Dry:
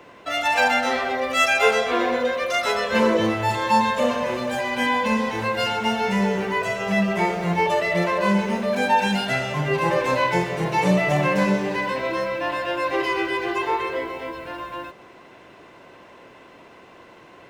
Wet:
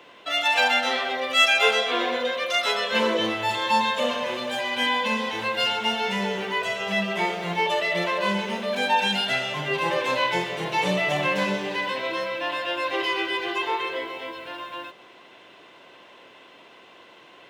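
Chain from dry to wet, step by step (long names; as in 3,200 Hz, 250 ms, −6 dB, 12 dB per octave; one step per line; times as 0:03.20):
high-pass filter 300 Hz 6 dB per octave
parametric band 3,300 Hz +10 dB 0.67 octaves
level −3 dB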